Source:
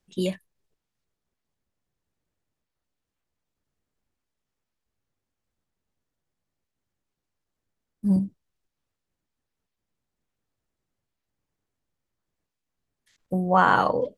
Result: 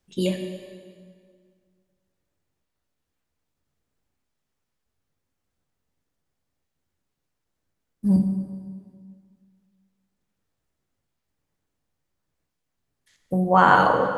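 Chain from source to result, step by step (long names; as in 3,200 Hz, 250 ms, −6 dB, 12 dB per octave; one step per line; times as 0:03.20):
dense smooth reverb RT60 2 s, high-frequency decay 0.8×, DRR 4 dB
level +2 dB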